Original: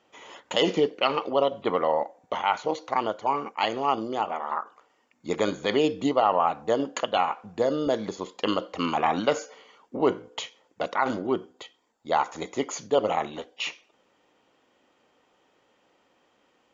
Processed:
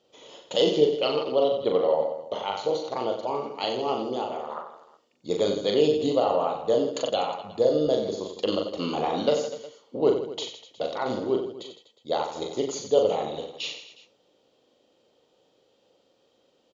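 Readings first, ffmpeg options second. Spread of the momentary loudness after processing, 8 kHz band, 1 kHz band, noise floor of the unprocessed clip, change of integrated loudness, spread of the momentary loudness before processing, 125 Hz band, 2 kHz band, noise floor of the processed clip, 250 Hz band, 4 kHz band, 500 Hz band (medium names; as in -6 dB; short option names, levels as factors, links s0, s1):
12 LU, no reading, -5.0 dB, -67 dBFS, +0.5 dB, 11 LU, +1.0 dB, -7.5 dB, -67 dBFS, -0.5 dB, +0.5 dB, +3.0 dB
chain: -af "equalizer=f=125:t=o:w=1:g=5,equalizer=f=500:t=o:w=1:g=9,equalizer=f=1000:t=o:w=1:g=-5,equalizer=f=2000:t=o:w=1:g=-9,equalizer=f=4000:t=o:w=1:g=11,aecho=1:1:40|92|159.6|247.5|361.7:0.631|0.398|0.251|0.158|0.1,volume=0.531"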